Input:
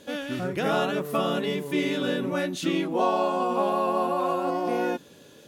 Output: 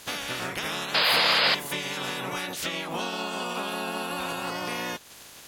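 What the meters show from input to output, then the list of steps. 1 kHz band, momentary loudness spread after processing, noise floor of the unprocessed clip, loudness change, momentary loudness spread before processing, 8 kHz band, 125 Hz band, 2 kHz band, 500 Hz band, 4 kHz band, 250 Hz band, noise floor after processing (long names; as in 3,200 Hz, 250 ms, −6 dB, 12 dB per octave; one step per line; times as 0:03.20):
−4.0 dB, 12 LU, −51 dBFS, 0.0 dB, 4 LU, +7.5 dB, −5.5 dB, +6.0 dB, −8.5 dB, +10.5 dB, −9.5 dB, −48 dBFS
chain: ceiling on every frequency bin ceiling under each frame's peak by 26 dB
downward compressor 6 to 1, threshold −33 dBFS, peak gain reduction 13 dB
sound drawn into the spectrogram noise, 0:00.94–0:01.55, 460–5,100 Hz −26 dBFS
level +4 dB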